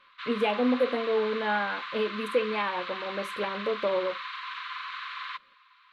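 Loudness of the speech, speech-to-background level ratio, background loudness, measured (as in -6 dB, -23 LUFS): -29.5 LUFS, 7.0 dB, -36.5 LUFS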